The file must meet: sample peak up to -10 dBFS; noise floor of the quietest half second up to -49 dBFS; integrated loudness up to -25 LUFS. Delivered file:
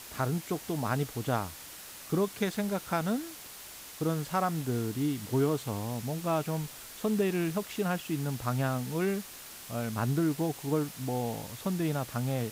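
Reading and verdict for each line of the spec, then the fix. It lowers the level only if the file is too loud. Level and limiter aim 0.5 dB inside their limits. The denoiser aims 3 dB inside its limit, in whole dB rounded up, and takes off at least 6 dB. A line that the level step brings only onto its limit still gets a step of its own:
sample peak -16.0 dBFS: OK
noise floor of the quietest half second -47 dBFS: fail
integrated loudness -32.0 LUFS: OK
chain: denoiser 6 dB, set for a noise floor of -47 dBFS

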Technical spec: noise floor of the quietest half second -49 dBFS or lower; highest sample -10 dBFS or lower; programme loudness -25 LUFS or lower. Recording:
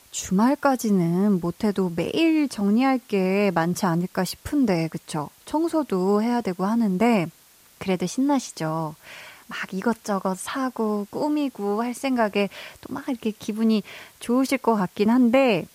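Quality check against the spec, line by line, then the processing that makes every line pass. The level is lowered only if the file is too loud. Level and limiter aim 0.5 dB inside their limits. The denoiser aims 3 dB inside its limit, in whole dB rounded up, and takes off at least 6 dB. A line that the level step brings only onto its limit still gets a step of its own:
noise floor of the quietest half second -54 dBFS: OK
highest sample -6.5 dBFS: fail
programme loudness -23.5 LUFS: fail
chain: gain -2 dB; limiter -10.5 dBFS

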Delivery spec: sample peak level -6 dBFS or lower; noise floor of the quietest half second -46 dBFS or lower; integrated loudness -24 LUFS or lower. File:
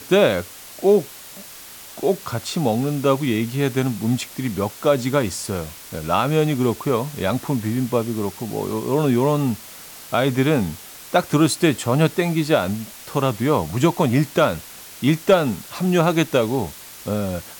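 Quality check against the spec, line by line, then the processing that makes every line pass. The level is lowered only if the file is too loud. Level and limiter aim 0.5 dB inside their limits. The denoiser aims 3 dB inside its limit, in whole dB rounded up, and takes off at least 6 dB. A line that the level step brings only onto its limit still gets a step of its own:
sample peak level -5.5 dBFS: fail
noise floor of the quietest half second -40 dBFS: fail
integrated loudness -21.0 LUFS: fail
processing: denoiser 6 dB, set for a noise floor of -40 dBFS; gain -3.5 dB

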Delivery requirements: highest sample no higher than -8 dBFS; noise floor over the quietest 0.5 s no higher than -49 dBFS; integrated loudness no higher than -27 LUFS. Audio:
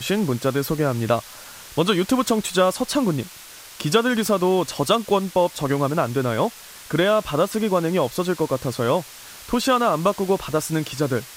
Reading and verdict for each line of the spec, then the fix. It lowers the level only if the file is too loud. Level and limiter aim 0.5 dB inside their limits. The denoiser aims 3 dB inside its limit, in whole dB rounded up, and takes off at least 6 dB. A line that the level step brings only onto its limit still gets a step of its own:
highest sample -4.0 dBFS: fail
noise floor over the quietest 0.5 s -42 dBFS: fail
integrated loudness -21.5 LUFS: fail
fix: denoiser 6 dB, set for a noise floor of -42 dBFS; gain -6 dB

